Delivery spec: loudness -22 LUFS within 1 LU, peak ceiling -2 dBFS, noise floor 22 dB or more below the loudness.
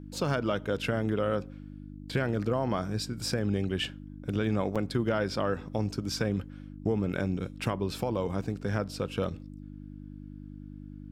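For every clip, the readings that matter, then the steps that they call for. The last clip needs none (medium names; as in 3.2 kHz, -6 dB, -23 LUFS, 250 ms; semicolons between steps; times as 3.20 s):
dropouts 1; longest dropout 6.3 ms; hum 50 Hz; highest harmonic 300 Hz; hum level -42 dBFS; loudness -31.5 LUFS; peak level -15.5 dBFS; loudness target -22.0 LUFS
-> interpolate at 4.75 s, 6.3 ms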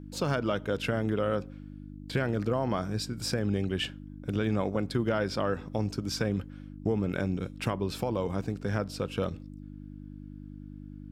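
dropouts 0; hum 50 Hz; highest harmonic 300 Hz; hum level -42 dBFS
-> de-hum 50 Hz, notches 6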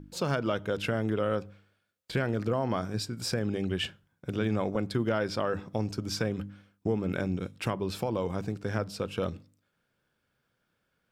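hum not found; loudness -31.5 LUFS; peak level -15.5 dBFS; loudness target -22.0 LUFS
-> trim +9.5 dB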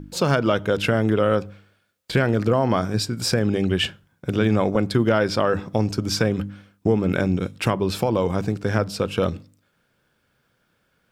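loudness -22.0 LUFS; peak level -6.0 dBFS; noise floor -68 dBFS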